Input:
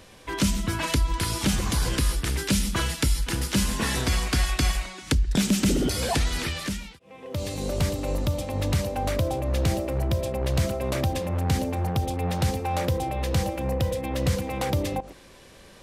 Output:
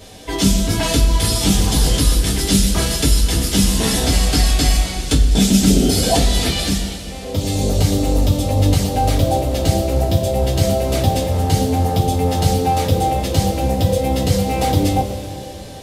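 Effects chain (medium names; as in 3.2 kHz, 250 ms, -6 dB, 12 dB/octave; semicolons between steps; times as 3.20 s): high-order bell 1.5 kHz -8 dB; in parallel at +0.5 dB: peak limiter -23.5 dBFS, peak gain reduction 11 dB; on the sum: two-slope reverb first 0.21 s, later 3.3 s, from -18 dB, DRR -7.5 dB; trim -1 dB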